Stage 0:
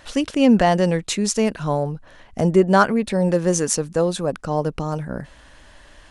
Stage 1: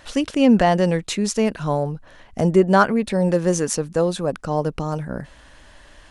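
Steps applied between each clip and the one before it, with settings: dynamic EQ 7600 Hz, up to -4 dB, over -35 dBFS, Q 0.76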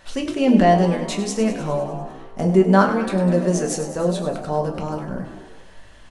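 on a send: frequency-shifting echo 0.1 s, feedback 63%, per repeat +60 Hz, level -11 dB; on the sum: shoebox room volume 180 m³, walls furnished, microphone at 1.1 m; gain -4 dB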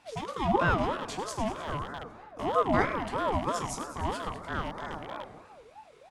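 rattling part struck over -29 dBFS, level -22 dBFS; ring modulator with a swept carrier 650 Hz, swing 35%, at 3.1 Hz; gain -8.5 dB

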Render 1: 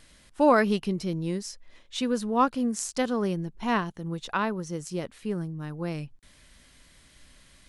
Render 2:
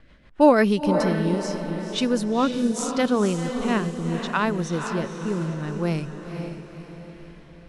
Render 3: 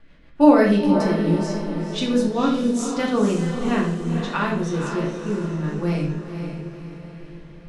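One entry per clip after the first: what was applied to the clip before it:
rotary speaker horn 6.3 Hz, later 0.75 Hz, at 0.28; low-pass opened by the level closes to 1900 Hz, open at -27.5 dBFS; diffused feedback echo 0.491 s, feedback 48%, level -7 dB; gain +6.5 dB
reverb RT60 0.60 s, pre-delay 3 ms, DRR -2.5 dB; gain -4 dB

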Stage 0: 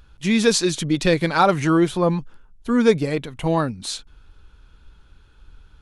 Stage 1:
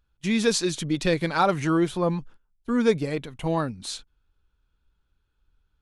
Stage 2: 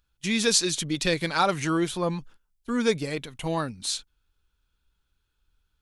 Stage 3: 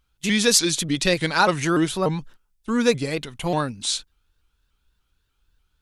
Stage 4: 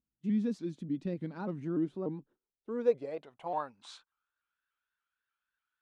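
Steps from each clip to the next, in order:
gate -37 dBFS, range -16 dB; gain -5 dB
high shelf 2100 Hz +10 dB; gain -3.5 dB
shaped vibrato saw up 3.4 Hz, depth 160 cents; gain +4.5 dB
band-pass sweep 230 Hz -> 1600 Hz, 1.7–4.54; gain -6 dB

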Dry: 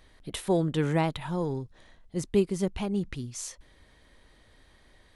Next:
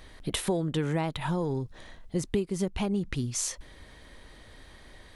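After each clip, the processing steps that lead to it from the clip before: compressor 5:1, threshold -34 dBFS, peak gain reduction 14.5 dB; gain +8 dB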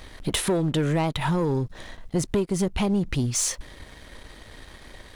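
sample leveller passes 2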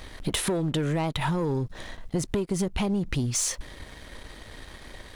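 compressor 4:1, threshold -25 dBFS, peak gain reduction 5 dB; gain +1 dB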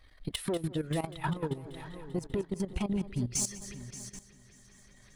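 per-bin expansion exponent 1.5; multi-head echo 0.195 s, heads first and third, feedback 53%, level -12.5 dB; level quantiser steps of 14 dB; gain -1.5 dB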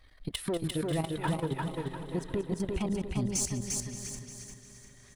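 feedback echo 0.348 s, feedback 37%, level -3 dB

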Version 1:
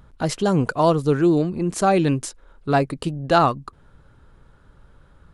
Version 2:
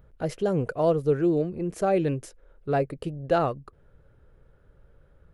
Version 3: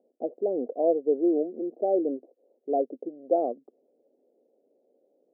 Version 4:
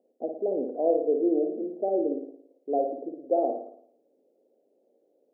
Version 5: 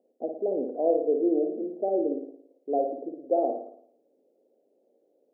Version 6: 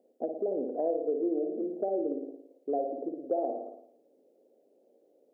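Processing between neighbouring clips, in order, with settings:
graphic EQ 250/500/1000/4000/8000 Hz -6/+7/-9/-8/-9 dB; gain -5 dB
Chebyshev band-pass 240–740 Hz, order 4
flutter echo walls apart 9.6 m, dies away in 0.63 s; gain -1.5 dB
nothing audible
compressor 2.5:1, threshold -33 dBFS, peak gain reduction 10 dB; gain +2.5 dB

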